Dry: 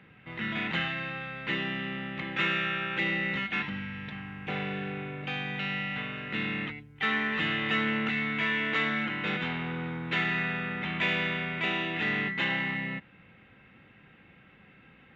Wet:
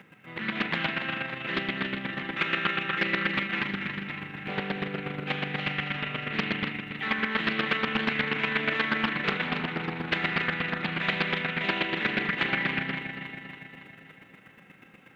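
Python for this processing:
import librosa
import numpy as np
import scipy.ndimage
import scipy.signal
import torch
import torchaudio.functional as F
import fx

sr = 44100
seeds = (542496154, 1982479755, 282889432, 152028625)

p1 = scipy.signal.sosfilt(scipy.signal.butter(2, 150.0, 'highpass', fs=sr, output='sos'), x)
p2 = fx.high_shelf(p1, sr, hz=5200.0, db=-5.5)
p3 = fx.over_compress(p2, sr, threshold_db=-31.0, ratio=-1.0)
p4 = p2 + (p3 * 10.0 ** (1.5 / 20.0))
p5 = fx.quant_dither(p4, sr, seeds[0], bits=12, dither='triangular')
p6 = fx.chopper(p5, sr, hz=8.3, depth_pct=65, duty_pct=15)
p7 = fx.echo_feedback(p6, sr, ms=280, feedback_pct=59, wet_db=-8.0)
p8 = fx.doppler_dist(p7, sr, depth_ms=0.47)
y = p8 * 10.0 ** (1.5 / 20.0)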